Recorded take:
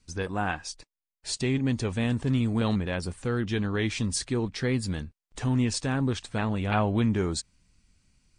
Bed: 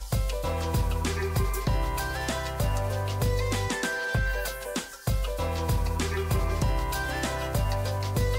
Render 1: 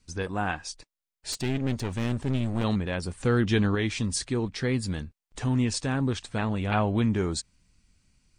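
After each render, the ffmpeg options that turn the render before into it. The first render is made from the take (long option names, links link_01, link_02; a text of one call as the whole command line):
ffmpeg -i in.wav -filter_complex "[0:a]asettb=1/sr,asplit=3[link_01][link_02][link_03];[link_01]atrim=end=1.324[link_04];[link_02]atrim=start=1.32:end=2.64,asetpts=PTS-STARTPTS,afade=type=in:duration=0.004:curve=qsin,afade=type=out:start_time=1.316:duration=0.004:curve=qsin,aeval=exprs='clip(val(0),-1,0.0211)':channel_layout=same[link_05];[link_03]atrim=start=2.636[link_06];[link_04][link_05]acrossfade=duration=0.004:curve1=hsin:curve2=qsin[link_07];[link_07][link_06]acrossfade=duration=0.004:curve1=qsin:curve2=hsin,asettb=1/sr,asplit=3[link_08][link_09][link_10];[link_08]atrim=end=3.204[link_11];[link_09]atrim=start=3.2:end=3.75,asetpts=PTS-STARTPTS,afade=type=in:duration=0.004:curve=qsin,afade=type=out:start_time=0.546:duration=0.004:curve=qsin,acontrast=23[link_12];[link_10]atrim=start=3.746[link_13];[link_11][link_12]acrossfade=duration=0.004:curve1=hsin:curve2=qsin[link_14];[link_14][link_13]acrossfade=duration=0.004:curve1=qsin:curve2=hsin" out.wav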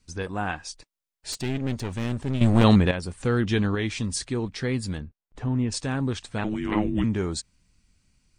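ffmpeg -i in.wav -filter_complex "[0:a]asplit=3[link_01][link_02][link_03];[link_01]afade=type=out:start_time=4.97:duration=0.02[link_04];[link_02]lowpass=frequency=1100:poles=1,afade=type=in:start_time=4.97:duration=0.02,afade=type=out:start_time=5.71:duration=0.02[link_05];[link_03]afade=type=in:start_time=5.71:duration=0.02[link_06];[link_04][link_05][link_06]amix=inputs=3:normalize=0,asettb=1/sr,asplit=3[link_07][link_08][link_09];[link_07]atrim=end=6.444[link_10];[link_08]atrim=start=6.44:end=7.04,asetpts=PTS-STARTPTS,afade=type=in:duration=0.004:curve=qsin,afade=type=out:start_time=0.596:duration=0.004:curve=qsin,afreqshift=-430[link_11];[link_09]atrim=start=7.036[link_12];[link_10][link_11]acrossfade=duration=0.004:curve1=hsin:curve2=qsin[link_13];[link_13][link_12]acrossfade=duration=0.004:curve1=qsin:curve2=hsin,asplit=3[link_14][link_15][link_16];[link_14]atrim=end=2.412[link_17];[link_15]atrim=start=2.408:end=2.912,asetpts=PTS-STARTPTS,volume=10dB[link_18];[link_16]atrim=start=2.908[link_19];[link_17][link_18]acrossfade=duration=0.004:curve1=hsin:curve2=hsin[link_20];[link_20][link_19]acrossfade=duration=0.004:curve1=hsin:curve2=hsin" out.wav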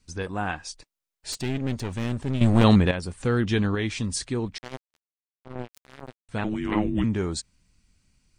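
ffmpeg -i in.wav -filter_complex "[0:a]asettb=1/sr,asplit=3[link_01][link_02][link_03];[link_01]atrim=end=4.584[link_04];[link_02]atrim=start=4.58:end=6.29,asetpts=PTS-STARTPTS,afade=type=in:duration=0.004:curve=qsin,afade=type=out:start_time=1.706:duration=0.004:curve=qsin,acrusher=bits=2:mix=0:aa=0.5[link_05];[link_03]atrim=start=6.286[link_06];[link_04][link_05]acrossfade=duration=0.004:curve1=hsin:curve2=qsin[link_07];[link_07][link_06]acrossfade=duration=0.004:curve1=qsin:curve2=hsin" out.wav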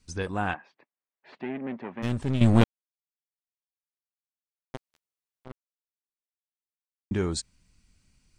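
ffmpeg -i in.wav -filter_complex "[0:a]asplit=3[link_01][link_02][link_03];[link_01]afade=type=out:start_time=0.53:duration=0.02[link_04];[link_02]highpass=frequency=220:width=0.5412,highpass=frequency=220:width=1.3066,equalizer=frequency=300:width_type=q:width=4:gain=-6,equalizer=frequency=470:width_type=q:width=4:gain=-5,equalizer=frequency=1400:width_type=q:width=4:gain=-5,lowpass=frequency=2100:width=0.5412,lowpass=frequency=2100:width=1.3066,afade=type=in:start_time=0.53:duration=0.02,afade=type=out:start_time=2.02:duration=0.02[link_05];[link_03]afade=type=in:start_time=2.02:duration=0.02[link_06];[link_04][link_05][link_06]amix=inputs=3:normalize=0,asplit=5[link_07][link_08][link_09][link_10][link_11];[link_07]atrim=end=2.64,asetpts=PTS-STARTPTS,afade=type=out:start_time=2.636:duration=0.004:curve=hsin[link_12];[link_08]atrim=start=2.64:end=4.74,asetpts=PTS-STARTPTS,volume=0[link_13];[link_09]atrim=start=4.74:end=5.52,asetpts=PTS-STARTPTS,afade=type=in:duration=0.004:curve=hsin,afade=type=out:start_time=0.776:duration=0.004:curve=hsin[link_14];[link_10]atrim=start=5.52:end=7.11,asetpts=PTS-STARTPTS,volume=0[link_15];[link_11]atrim=start=7.11,asetpts=PTS-STARTPTS,afade=type=in:duration=0.004:curve=hsin[link_16];[link_12][link_13][link_14][link_15][link_16]concat=n=5:v=0:a=1" out.wav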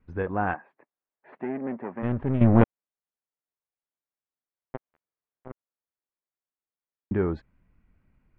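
ffmpeg -i in.wav -af "lowpass=frequency=2000:width=0.5412,lowpass=frequency=2000:width=1.3066,equalizer=frequency=530:width=0.65:gain=4" out.wav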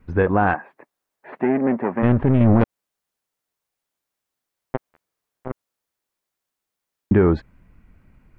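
ffmpeg -i in.wav -filter_complex "[0:a]asplit=2[link_01][link_02];[link_02]acontrast=83,volume=2.5dB[link_03];[link_01][link_03]amix=inputs=2:normalize=0,alimiter=limit=-7.5dB:level=0:latency=1:release=92" out.wav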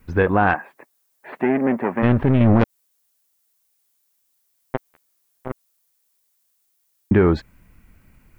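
ffmpeg -i in.wav -af "crystalizer=i=4:c=0" out.wav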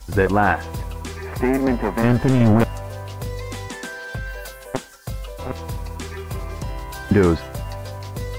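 ffmpeg -i in.wav -i bed.wav -filter_complex "[1:a]volume=-3dB[link_01];[0:a][link_01]amix=inputs=2:normalize=0" out.wav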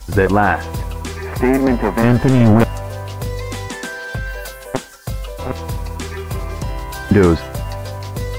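ffmpeg -i in.wav -af "volume=5dB,alimiter=limit=-3dB:level=0:latency=1" out.wav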